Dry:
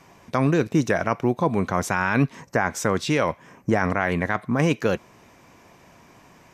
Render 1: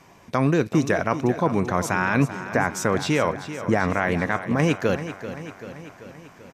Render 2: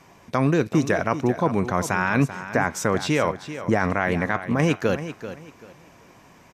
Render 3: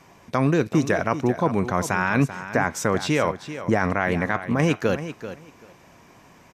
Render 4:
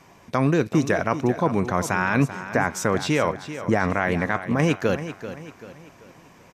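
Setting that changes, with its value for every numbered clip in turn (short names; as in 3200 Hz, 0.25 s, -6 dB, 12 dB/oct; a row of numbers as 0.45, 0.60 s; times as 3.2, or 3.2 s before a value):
feedback echo, feedback: 60, 25, 16, 41%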